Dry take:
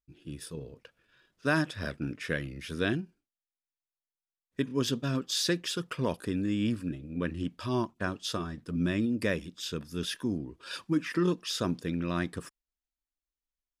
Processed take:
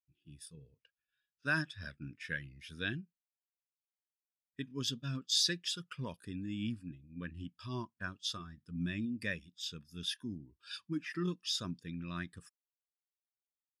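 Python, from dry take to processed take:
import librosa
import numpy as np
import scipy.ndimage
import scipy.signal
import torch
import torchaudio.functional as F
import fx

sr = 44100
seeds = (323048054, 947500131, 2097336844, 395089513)

y = fx.tone_stack(x, sr, knobs='5-5-5')
y = fx.spectral_expand(y, sr, expansion=1.5)
y = y * librosa.db_to_amplitude(7.5)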